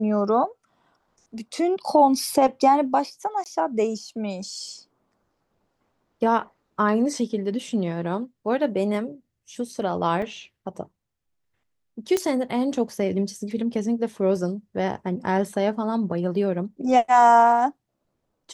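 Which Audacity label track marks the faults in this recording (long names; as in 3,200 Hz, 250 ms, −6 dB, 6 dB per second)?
3.440000	3.460000	drop-out 18 ms
10.220000	10.220000	drop-out 3.7 ms
12.170000	12.170000	click −10 dBFS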